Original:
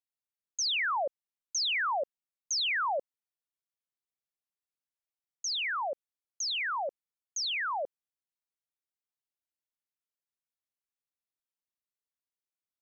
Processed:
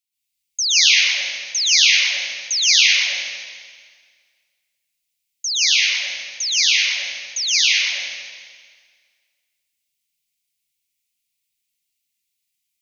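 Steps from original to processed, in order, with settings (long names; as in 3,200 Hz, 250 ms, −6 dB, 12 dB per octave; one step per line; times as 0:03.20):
drawn EQ curve 220 Hz 0 dB, 690 Hz −25 dB, 1,300 Hz −24 dB, 2,200 Hz +9 dB
dense smooth reverb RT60 1.8 s, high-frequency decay 0.9×, pre-delay 105 ms, DRR −8.5 dB
level +1 dB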